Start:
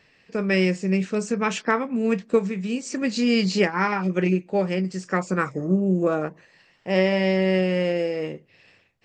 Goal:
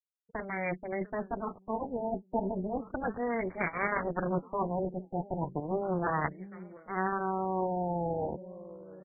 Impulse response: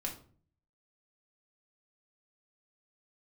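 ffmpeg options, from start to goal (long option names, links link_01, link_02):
-filter_complex "[0:a]afftfilt=real='re*gte(hypot(re,im),0.0316)':imag='im*gte(hypot(re,im),0.0316)':win_size=1024:overlap=0.75,asplit=2[link_01][link_02];[link_02]aecho=0:1:696|1392|2088|2784:0.0891|0.0463|0.0241|0.0125[link_03];[link_01][link_03]amix=inputs=2:normalize=0,aeval=exprs='0.501*(cos(1*acos(clip(val(0)/0.501,-1,1)))-cos(1*PI/2))+0.2*(cos(3*acos(clip(val(0)/0.501,-1,1)))-cos(3*PI/2))+0.0224*(cos(4*acos(clip(val(0)/0.501,-1,1)))-cos(4*PI/2))+0.0251*(cos(8*acos(clip(val(0)/0.501,-1,1)))-cos(8*PI/2))':channel_layout=same,areverse,acompressor=threshold=-36dB:ratio=6,areverse,highpass=frequency=59:poles=1,aemphasis=mode=production:type=75kf,dynaudnorm=framelen=380:gausssize=9:maxgain=3dB,aresample=32000,aresample=44100,alimiter=level_in=16.5dB:limit=-1dB:release=50:level=0:latency=1,afftfilt=real='re*lt(b*sr/1024,900*pow(2400/900,0.5+0.5*sin(2*PI*0.34*pts/sr)))':imag='im*lt(b*sr/1024,900*pow(2400/900,0.5+0.5*sin(2*PI*0.34*pts/sr)))':win_size=1024:overlap=0.75,volume=-8.5dB"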